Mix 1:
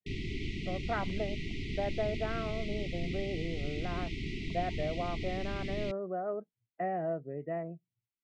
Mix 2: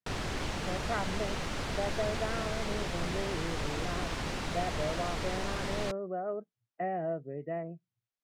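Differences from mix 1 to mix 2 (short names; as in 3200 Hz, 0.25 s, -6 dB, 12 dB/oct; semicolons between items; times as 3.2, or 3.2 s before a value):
background: remove brick-wall FIR band-stop 430–1900 Hz; master: remove LPF 3000 Hz 12 dB/oct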